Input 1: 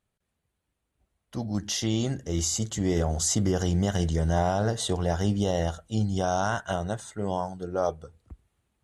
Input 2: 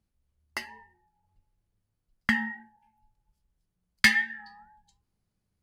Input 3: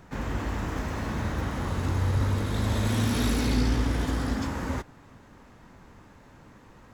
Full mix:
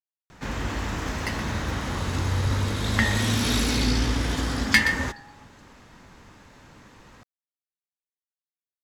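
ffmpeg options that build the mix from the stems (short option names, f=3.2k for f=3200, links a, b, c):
-filter_complex "[1:a]adelay=700,volume=1dB,asplit=2[a][b];[b]volume=-10.5dB[c];[2:a]equalizer=f=4.6k:t=o:w=2.7:g=8,adelay=300,volume=0.5dB[d];[c]aecho=0:1:123:1[e];[a][d][e]amix=inputs=3:normalize=0"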